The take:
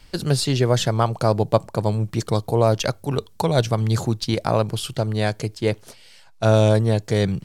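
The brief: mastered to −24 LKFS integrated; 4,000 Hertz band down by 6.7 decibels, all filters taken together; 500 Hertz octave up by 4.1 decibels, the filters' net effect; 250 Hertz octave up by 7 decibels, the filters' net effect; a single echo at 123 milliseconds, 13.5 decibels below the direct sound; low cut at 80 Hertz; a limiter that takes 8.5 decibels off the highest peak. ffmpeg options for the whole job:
ffmpeg -i in.wav -af "highpass=80,equalizer=frequency=250:width_type=o:gain=8.5,equalizer=frequency=500:width_type=o:gain=3,equalizer=frequency=4000:width_type=o:gain=-8.5,alimiter=limit=-6dB:level=0:latency=1,aecho=1:1:123:0.211,volume=-4dB" out.wav

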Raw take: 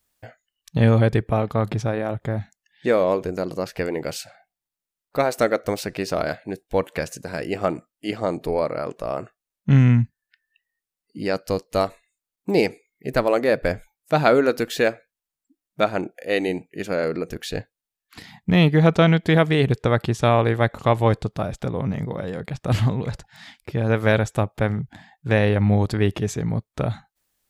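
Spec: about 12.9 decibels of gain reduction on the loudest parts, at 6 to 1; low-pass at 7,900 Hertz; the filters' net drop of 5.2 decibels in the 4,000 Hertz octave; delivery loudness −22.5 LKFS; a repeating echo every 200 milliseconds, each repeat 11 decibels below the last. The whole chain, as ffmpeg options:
ffmpeg -i in.wav -af "lowpass=7900,equalizer=frequency=4000:width_type=o:gain=-6.5,acompressor=threshold=-25dB:ratio=6,aecho=1:1:200|400|600:0.282|0.0789|0.0221,volume=8.5dB" out.wav

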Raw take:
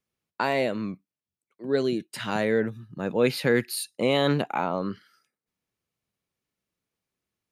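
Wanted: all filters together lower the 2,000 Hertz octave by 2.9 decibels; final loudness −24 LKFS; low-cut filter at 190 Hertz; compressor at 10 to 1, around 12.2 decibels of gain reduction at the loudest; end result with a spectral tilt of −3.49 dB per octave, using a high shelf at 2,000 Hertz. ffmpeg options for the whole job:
ffmpeg -i in.wav -af "highpass=190,highshelf=frequency=2000:gain=6.5,equalizer=frequency=2000:width_type=o:gain=-7.5,acompressor=threshold=-30dB:ratio=10,volume=11.5dB" out.wav

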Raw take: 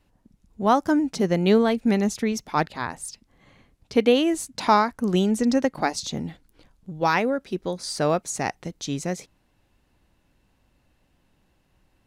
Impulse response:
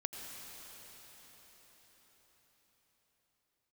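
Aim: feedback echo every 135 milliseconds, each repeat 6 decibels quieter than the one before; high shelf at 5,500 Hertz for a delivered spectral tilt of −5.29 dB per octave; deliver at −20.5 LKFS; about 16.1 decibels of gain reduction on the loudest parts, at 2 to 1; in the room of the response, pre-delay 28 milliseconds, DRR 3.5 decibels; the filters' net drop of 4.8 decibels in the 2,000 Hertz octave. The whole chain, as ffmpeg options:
-filter_complex "[0:a]equalizer=frequency=2000:width_type=o:gain=-5.5,highshelf=frequency=5500:gain=-7,acompressor=threshold=-44dB:ratio=2,aecho=1:1:135|270|405|540|675|810:0.501|0.251|0.125|0.0626|0.0313|0.0157,asplit=2[link_01][link_02];[1:a]atrim=start_sample=2205,adelay=28[link_03];[link_02][link_03]afir=irnorm=-1:irlink=0,volume=-4dB[link_04];[link_01][link_04]amix=inputs=2:normalize=0,volume=15.5dB"

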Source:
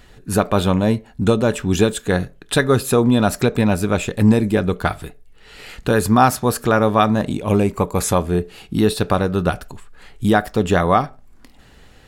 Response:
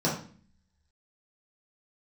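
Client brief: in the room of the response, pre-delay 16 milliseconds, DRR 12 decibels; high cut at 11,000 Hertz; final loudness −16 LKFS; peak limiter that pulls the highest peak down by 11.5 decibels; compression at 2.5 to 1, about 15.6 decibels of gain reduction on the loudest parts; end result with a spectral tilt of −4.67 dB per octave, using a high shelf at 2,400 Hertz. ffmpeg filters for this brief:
-filter_complex "[0:a]lowpass=11000,highshelf=frequency=2400:gain=9,acompressor=threshold=-33dB:ratio=2.5,alimiter=limit=-23.5dB:level=0:latency=1,asplit=2[link_01][link_02];[1:a]atrim=start_sample=2205,adelay=16[link_03];[link_02][link_03]afir=irnorm=-1:irlink=0,volume=-23dB[link_04];[link_01][link_04]amix=inputs=2:normalize=0,volume=17.5dB"

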